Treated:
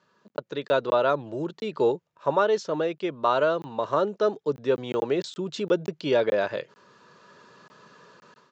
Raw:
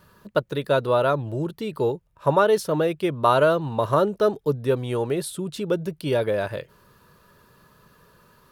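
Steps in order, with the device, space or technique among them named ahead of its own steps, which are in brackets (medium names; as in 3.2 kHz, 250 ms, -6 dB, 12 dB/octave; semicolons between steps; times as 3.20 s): call with lost packets (high-pass 140 Hz 6 dB/octave; resampled via 16 kHz; level rider gain up to 14 dB; lost packets of 20 ms random); high-pass 190 Hz 12 dB/octave; trim -9 dB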